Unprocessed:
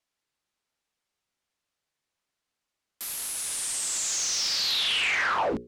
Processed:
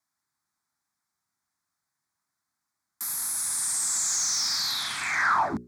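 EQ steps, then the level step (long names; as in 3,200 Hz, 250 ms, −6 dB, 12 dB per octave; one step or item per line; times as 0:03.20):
high-pass filter 87 Hz 12 dB per octave
phaser with its sweep stopped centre 1,200 Hz, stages 4
+4.5 dB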